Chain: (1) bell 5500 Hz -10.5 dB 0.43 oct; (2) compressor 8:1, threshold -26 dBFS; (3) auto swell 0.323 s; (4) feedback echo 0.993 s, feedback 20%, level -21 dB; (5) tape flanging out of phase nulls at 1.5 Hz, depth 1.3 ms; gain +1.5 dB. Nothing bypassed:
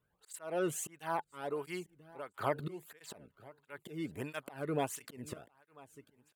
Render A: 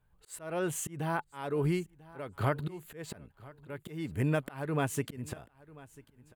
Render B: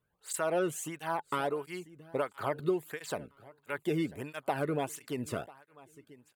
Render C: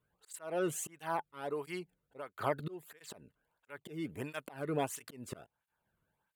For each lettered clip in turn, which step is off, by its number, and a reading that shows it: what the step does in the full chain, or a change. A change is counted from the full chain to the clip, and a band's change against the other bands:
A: 5, 125 Hz band +9.5 dB; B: 3, crest factor change -5.0 dB; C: 4, momentary loudness spread change -5 LU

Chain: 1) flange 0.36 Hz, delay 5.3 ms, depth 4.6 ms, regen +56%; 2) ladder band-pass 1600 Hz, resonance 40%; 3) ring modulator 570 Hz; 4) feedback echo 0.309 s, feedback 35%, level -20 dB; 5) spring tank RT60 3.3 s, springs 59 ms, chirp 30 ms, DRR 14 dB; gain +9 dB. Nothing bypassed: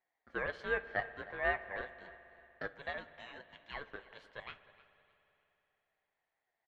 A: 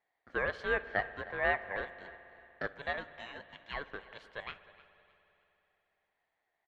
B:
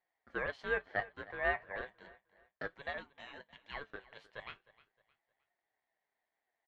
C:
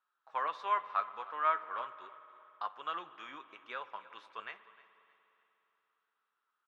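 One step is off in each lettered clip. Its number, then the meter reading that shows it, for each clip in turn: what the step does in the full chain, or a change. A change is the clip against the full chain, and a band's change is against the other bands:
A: 1, loudness change +3.0 LU; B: 5, echo-to-direct -13.0 dB to -19.5 dB; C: 3, crest factor change -2.5 dB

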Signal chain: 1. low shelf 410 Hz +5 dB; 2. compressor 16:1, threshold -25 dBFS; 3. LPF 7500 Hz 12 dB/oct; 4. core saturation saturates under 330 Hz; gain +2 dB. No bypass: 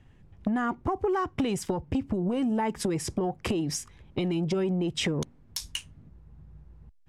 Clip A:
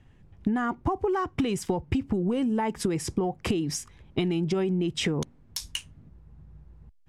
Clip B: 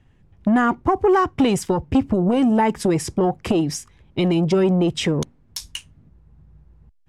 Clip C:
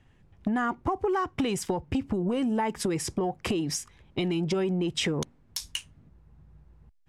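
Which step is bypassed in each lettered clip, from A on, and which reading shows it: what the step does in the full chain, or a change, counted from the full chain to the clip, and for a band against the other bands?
4, loudness change +1.0 LU; 2, mean gain reduction 7.0 dB; 1, 125 Hz band -2.0 dB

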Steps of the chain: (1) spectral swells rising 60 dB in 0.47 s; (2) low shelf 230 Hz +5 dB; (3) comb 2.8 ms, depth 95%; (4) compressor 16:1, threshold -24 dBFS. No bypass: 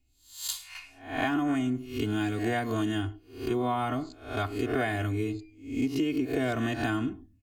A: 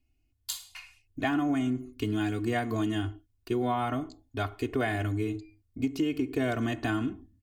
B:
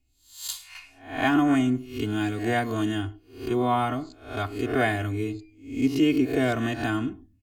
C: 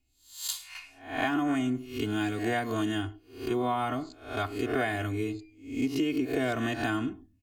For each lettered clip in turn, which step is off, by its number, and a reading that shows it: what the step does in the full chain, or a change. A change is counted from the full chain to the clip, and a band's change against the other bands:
1, 8 kHz band -2.0 dB; 4, mean gain reduction 2.0 dB; 2, 125 Hz band -3.5 dB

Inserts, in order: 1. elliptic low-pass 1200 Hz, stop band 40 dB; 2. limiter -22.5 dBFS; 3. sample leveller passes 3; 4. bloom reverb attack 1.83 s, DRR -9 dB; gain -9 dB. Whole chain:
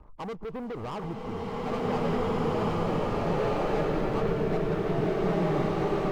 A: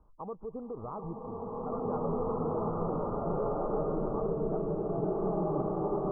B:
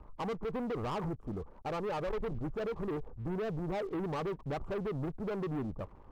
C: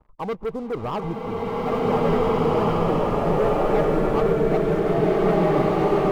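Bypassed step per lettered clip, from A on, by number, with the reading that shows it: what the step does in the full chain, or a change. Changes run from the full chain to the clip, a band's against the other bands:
3, 125 Hz band -1.5 dB; 4, momentary loudness spread change -5 LU; 2, mean gain reduction 1.5 dB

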